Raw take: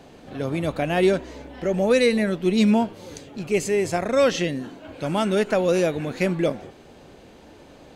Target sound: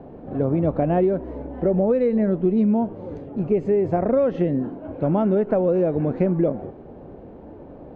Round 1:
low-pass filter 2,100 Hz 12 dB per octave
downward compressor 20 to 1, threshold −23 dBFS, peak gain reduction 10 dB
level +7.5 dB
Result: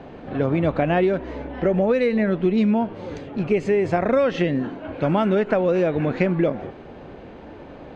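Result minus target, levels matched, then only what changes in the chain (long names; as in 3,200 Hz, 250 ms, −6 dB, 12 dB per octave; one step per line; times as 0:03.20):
2,000 Hz band +13.0 dB
change: low-pass filter 730 Hz 12 dB per octave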